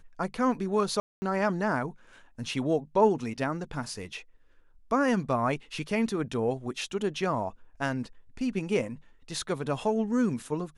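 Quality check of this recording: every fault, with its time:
0:01.00–0:01.22: drop-out 220 ms

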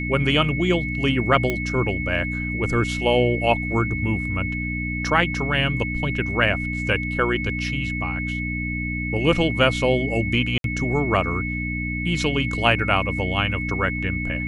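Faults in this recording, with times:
mains hum 60 Hz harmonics 5 −28 dBFS
whistle 2,200 Hz −28 dBFS
0:01.50: click −10 dBFS
0:10.58–0:10.64: drop-out 62 ms

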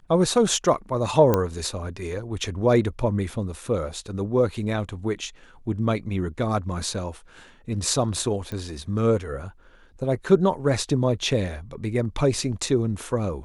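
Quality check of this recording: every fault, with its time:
0:01.34: click −7 dBFS
0:08.52: click −20 dBFS

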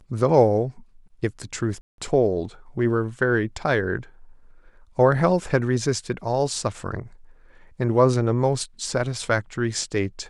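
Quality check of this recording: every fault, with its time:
0:01.81–0:01.98: drop-out 172 ms

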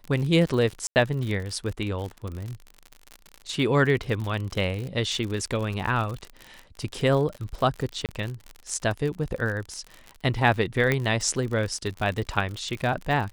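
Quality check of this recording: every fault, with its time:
surface crackle 55 per second −30 dBFS
0:00.87–0:00.96: drop-out 89 ms
0:08.06–0:08.09: drop-out 28 ms
0:10.92: click −10 dBFS

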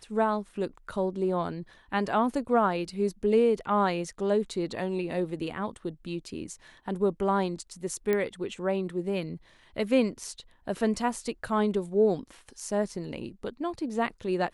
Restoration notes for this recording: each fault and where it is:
0:08.13: click −15 dBFS

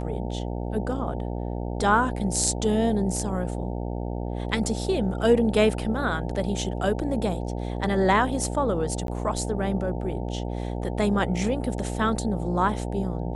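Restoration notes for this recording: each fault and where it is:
mains buzz 60 Hz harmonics 15 −30 dBFS
0:09.07–0:09.08: drop-out 12 ms

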